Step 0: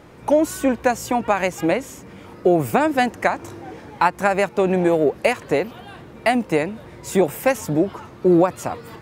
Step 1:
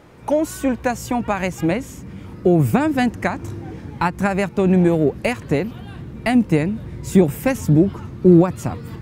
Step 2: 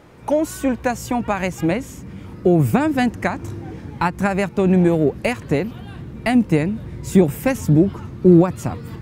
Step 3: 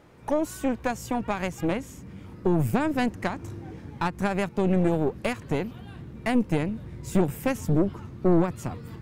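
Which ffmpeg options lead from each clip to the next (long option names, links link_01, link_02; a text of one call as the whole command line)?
ffmpeg -i in.wav -af "asubboost=boost=6.5:cutoff=250,volume=-1.5dB" out.wav
ffmpeg -i in.wav -af anull out.wav
ffmpeg -i in.wav -af "aeval=exprs='(tanh(3.55*val(0)+0.65)-tanh(0.65))/3.55':channel_layout=same,volume=-4dB" out.wav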